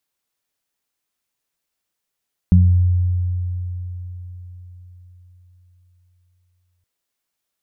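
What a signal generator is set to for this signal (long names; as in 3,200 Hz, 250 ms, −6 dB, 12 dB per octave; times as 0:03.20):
harmonic partials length 4.32 s, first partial 89.6 Hz, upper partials −1 dB, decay 4.52 s, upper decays 0.49 s, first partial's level −8 dB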